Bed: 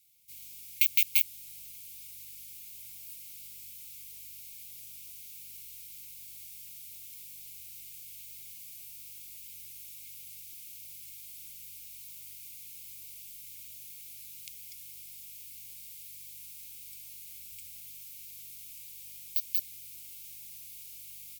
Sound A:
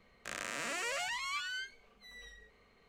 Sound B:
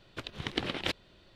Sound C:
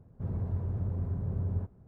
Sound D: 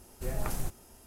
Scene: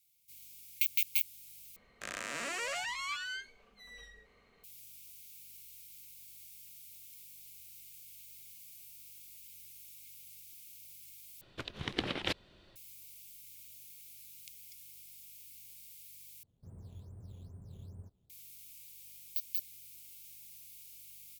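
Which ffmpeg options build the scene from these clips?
ffmpeg -i bed.wav -i cue0.wav -i cue1.wav -i cue2.wav -filter_complex "[0:a]volume=-6dB[link_01];[3:a]acrusher=samples=9:mix=1:aa=0.000001:lfo=1:lforange=9:lforate=2.4[link_02];[link_01]asplit=4[link_03][link_04][link_05][link_06];[link_03]atrim=end=1.764[link_07];[1:a]atrim=end=2.88[link_08];[link_04]atrim=start=4.636:end=11.414[link_09];[2:a]atrim=end=1.35,asetpts=PTS-STARTPTS,volume=-2dB[link_10];[link_05]atrim=start=12.756:end=16.434[link_11];[link_02]atrim=end=1.87,asetpts=PTS-STARTPTS,volume=-17.5dB[link_12];[link_06]atrim=start=18.296[link_13];[link_07][link_08]acrossfade=duration=0.004:curve1=hsin:curve2=hsin[link_14];[link_14][link_09]acrossfade=duration=0.004:curve1=hsin:curve2=hsin[link_15];[link_15][link_10]acrossfade=duration=0.004:curve1=hsin:curve2=hsin[link_16];[link_16][link_11]acrossfade=duration=0.004:curve1=hsin:curve2=hsin[link_17];[link_17][link_12]acrossfade=duration=0.004:curve1=hsin:curve2=hsin[link_18];[link_18][link_13]acrossfade=duration=0.004:curve1=hsin:curve2=hsin" out.wav

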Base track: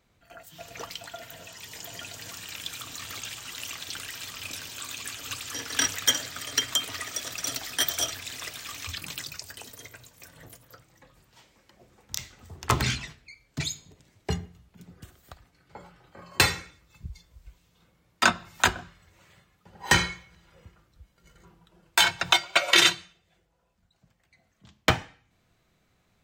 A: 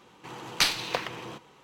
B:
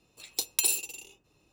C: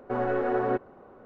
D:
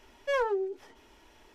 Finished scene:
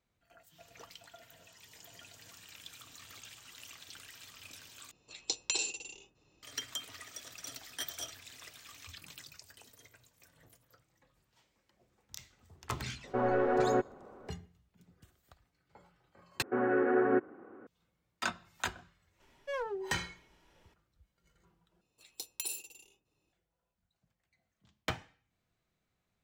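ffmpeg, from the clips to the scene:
ffmpeg -i bed.wav -i cue0.wav -i cue1.wav -i cue2.wav -i cue3.wav -filter_complex "[2:a]asplit=2[link_01][link_02];[3:a]asplit=2[link_03][link_04];[0:a]volume=-14dB[link_05];[link_01]aresample=16000,aresample=44100[link_06];[link_04]highpass=150,equalizer=frequency=150:width_type=q:width=4:gain=-7,equalizer=frequency=310:width_type=q:width=4:gain=9,equalizer=frequency=610:width_type=q:width=4:gain=-8,equalizer=frequency=940:width_type=q:width=4:gain=-6,equalizer=frequency=1600:width_type=q:width=4:gain=5,lowpass=frequency=2500:width=0.5412,lowpass=frequency=2500:width=1.3066[link_07];[link_05]asplit=4[link_08][link_09][link_10][link_11];[link_08]atrim=end=4.914[link_12];[link_06]atrim=end=1.52,asetpts=PTS-STARTPTS,volume=-2dB[link_13];[link_09]atrim=start=6.426:end=16.424[link_14];[link_07]atrim=end=1.25,asetpts=PTS-STARTPTS,volume=-1.5dB[link_15];[link_10]atrim=start=17.666:end=21.814[link_16];[link_02]atrim=end=1.52,asetpts=PTS-STARTPTS,volume=-12.5dB[link_17];[link_11]atrim=start=23.326[link_18];[link_03]atrim=end=1.25,asetpts=PTS-STARTPTS,volume=-2dB,afade=type=in:duration=0.004:curve=hsin,afade=type=out:start_time=1.246:duration=0.004:curve=hsin,adelay=13040[link_19];[4:a]atrim=end=1.54,asetpts=PTS-STARTPTS,volume=-9dB,afade=type=in:duration=0.004:curve=hsin,afade=type=out:start_time=1.536:duration=0.004:curve=hsin,adelay=19200[link_20];[link_12][link_13]acrossfade=duration=0.004:curve1=hsin:curve2=hsin[link_21];[link_21][link_14]acrossfade=duration=0.004:curve1=hsin:curve2=hsin[link_22];[link_22][link_15]acrossfade=duration=0.004:curve1=hsin:curve2=hsin[link_23];[link_23][link_16]acrossfade=duration=0.004:curve1=hsin:curve2=hsin[link_24];[link_24][link_17]acrossfade=duration=0.004:curve1=hsin:curve2=hsin[link_25];[link_25][link_18]acrossfade=duration=0.004:curve1=hsin:curve2=hsin[link_26];[link_26][link_19][link_20]amix=inputs=3:normalize=0" out.wav

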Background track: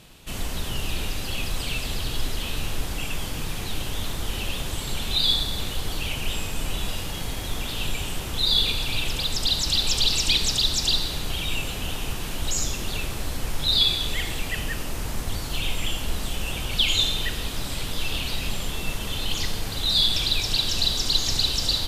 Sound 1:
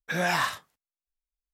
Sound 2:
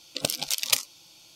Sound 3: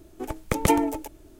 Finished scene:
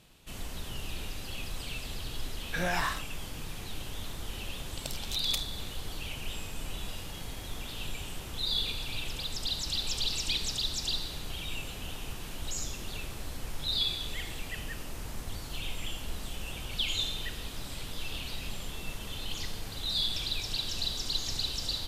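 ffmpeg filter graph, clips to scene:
ffmpeg -i bed.wav -i cue0.wav -i cue1.wav -filter_complex "[0:a]volume=-10dB[link_01];[1:a]alimiter=limit=-17.5dB:level=0:latency=1:release=81,atrim=end=1.53,asetpts=PTS-STARTPTS,volume=-3.5dB,afade=type=in:duration=0.004:curve=hsin,afade=type=out:start_time=1.526:duration=0.004:curve=hsin,adelay=2440[link_02];[2:a]atrim=end=1.35,asetpts=PTS-STARTPTS,volume=-13.5dB,afade=type=in:duration=0.004:curve=hsin,afade=type=out:start_time=1.346:duration=0.004:curve=hsin,adelay=203301S[link_03];[link_01][link_02][link_03]amix=inputs=3:normalize=0" out.wav

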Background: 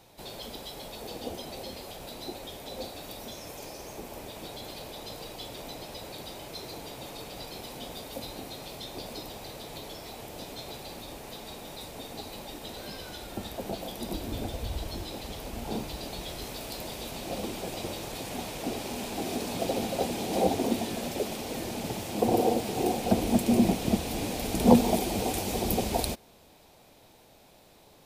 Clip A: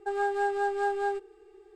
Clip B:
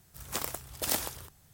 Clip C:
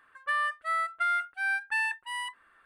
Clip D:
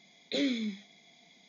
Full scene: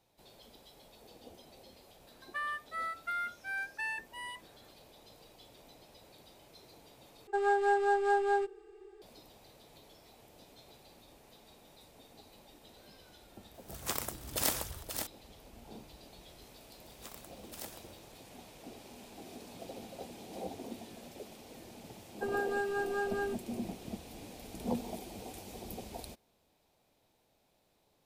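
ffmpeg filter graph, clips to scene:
ffmpeg -i bed.wav -i cue0.wav -i cue1.wav -i cue2.wav -filter_complex "[1:a]asplit=2[link_01][link_02];[2:a]asplit=2[link_03][link_04];[0:a]volume=-16.5dB[link_05];[link_03]aecho=1:1:530:0.447[link_06];[link_02]aecho=1:1:5.7:0.89[link_07];[link_05]asplit=2[link_08][link_09];[link_08]atrim=end=7.274[link_10];[link_01]atrim=end=1.75[link_11];[link_09]atrim=start=9.016[link_12];[3:a]atrim=end=2.65,asetpts=PTS-STARTPTS,volume=-8.5dB,afade=type=in:duration=0.004:curve=hsin,afade=type=out:start_time=2.646:duration=0.004:curve=hsin,adelay=2070[link_13];[link_06]atrim=end=1.53,asetpts=PTS-STARTPTS,volume=-1.5dB,afade=type=in:duration=0.004:curve=hsin,afade=type=out:start_time=1.526:duration=0.004:curve=hsin,adelay=13540[link_14];[link_04]atrim=end=1.53,asetpts=PTS-STARTPTS,volume=-16dB,afade=type=in:duration=0.004:curve=hsin,afade=type=out:start_time=1.526:duration=0.004:curve=hsin,adelay=16700[link_15];[link_07]atrim=end=1.75,asetpts=PTS-STARTPTS,volume=-6dB,afade=type=in:duration=0.004:curve=hsin,afade=type=out:start_time=1.746:duration=0.004:curve=hsin,adelay=22150[link_16];[link_10][link_11]acrossfade=duration=0.004:curve1=hsin:curve2=hsin[link_17];[link_17][link_12]acrossfade=duration=0.004:curve1=hsin:curve2=hsin[link_18];[link_18][link_13][link_14][link_15][link_16]amix=inputs=5:normalize=0" out.wav

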